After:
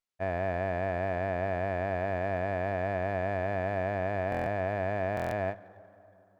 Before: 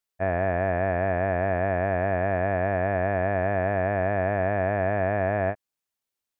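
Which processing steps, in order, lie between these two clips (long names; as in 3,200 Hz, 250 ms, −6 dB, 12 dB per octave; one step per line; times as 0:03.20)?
dense smooth reverb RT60 3.1 s, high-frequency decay 0.25×, pre-delay 100 ms, DRR 19 dB
buffer that repeats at 0:04.30/0:05.15, samples 1,024, times 6
windowed peak hold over 3 samples
level −6 dB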